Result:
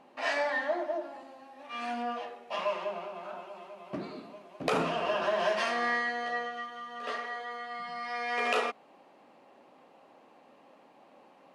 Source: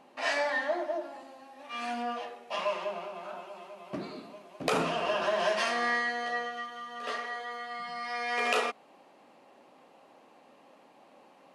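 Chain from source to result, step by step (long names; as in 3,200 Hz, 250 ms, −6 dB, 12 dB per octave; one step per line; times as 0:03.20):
high-shelf EQ 4,800 Hz −7.5 dB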